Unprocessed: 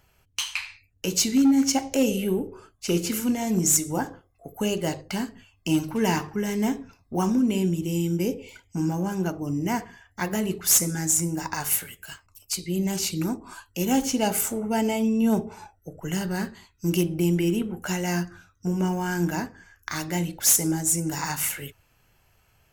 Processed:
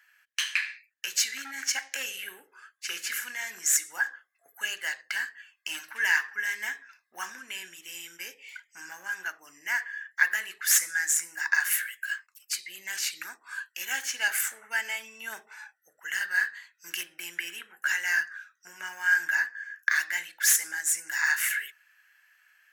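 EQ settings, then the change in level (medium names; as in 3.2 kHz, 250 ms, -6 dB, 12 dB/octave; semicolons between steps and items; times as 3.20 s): resonant high-pass 1.7 kHz, resonance Q 9.2; -3.5 dB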